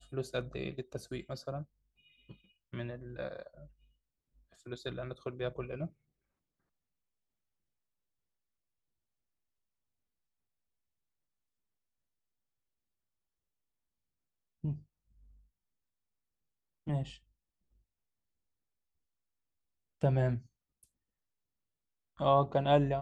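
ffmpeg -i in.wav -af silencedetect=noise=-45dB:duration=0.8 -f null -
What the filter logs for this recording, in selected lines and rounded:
silence_start: 3.64
silence_end: 4.66 | silence_duration: 1.03
silence_start: 5.87
silence_end: 14.64 | silence_duration: 8.77
silence_start: 14.78
silence_end: 16.87 | silence_duration: 2.09
silence_start: 17.14
silence_end: 20.01 | silence_duration: 2.87
silence_start: 20.39
silence_end: 22.19 | silence_duration: 1.80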